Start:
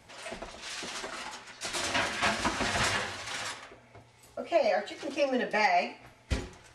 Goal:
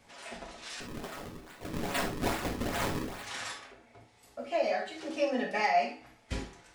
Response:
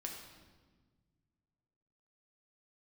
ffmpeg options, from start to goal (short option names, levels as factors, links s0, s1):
-filter_complex "[0:a]asettb=1/sr,asplit=3[s0][s1][s2];[s0]atrim=end=0.804[s3];[s1]atrim=start=0.8:end=3.23,asetpts=PTS-STARTPTS,afade=t=in:d=0.004:c=qsin,afade=t=out:st=2.426:d=0.004:c=qsin,acrusher=samples=35:mix=1:aa=0.000001:lfo=1:lforange=56:lforate=2.4[s4];[s2]atrim=start=3.226[s5];[s3][s4]acrossfade=d=0.004:c1=hsin:c2=qsin[s6];[s6][s5]acrossfade=d=0.004:c1=qsin:c2=hsin[s7];[1:a]atrim=start_sample=2205,atrim=end_sample=3528[s8];[s7][s8]afir=irnorm=-1:irlink=0"